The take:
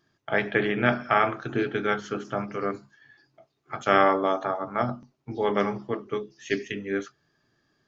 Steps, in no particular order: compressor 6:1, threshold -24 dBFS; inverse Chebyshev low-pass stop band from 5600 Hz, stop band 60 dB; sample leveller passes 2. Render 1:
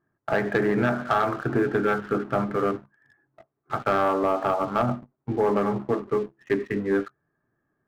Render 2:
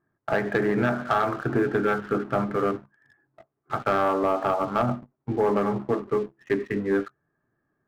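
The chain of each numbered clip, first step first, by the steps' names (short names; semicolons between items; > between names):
inverse Chebyshev low-pass > compressor > sample leveller; compressor > inverse Chebyshev low-pass > sample leveller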